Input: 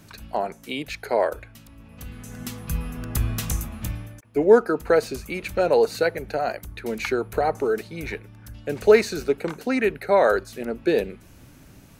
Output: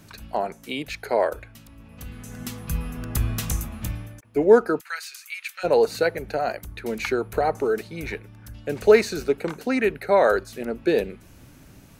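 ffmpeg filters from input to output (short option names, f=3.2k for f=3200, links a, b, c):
-filter_complex "[0:a]asplit=3[a][b][c];[a]afade=t=out:st=4.79:d=0.02[d];[b]highpass=f=1.5k:w=0.5412,highpass=f=1.5k:w=1.3066,afade=t=in:st=4.79:d=0.02,afade=t=out:st=5.63:d=0.02[e];[c]afade=t=in:st=5.63:d=0.02[f];[d][e][f]amix=inputs=3:normalize=0"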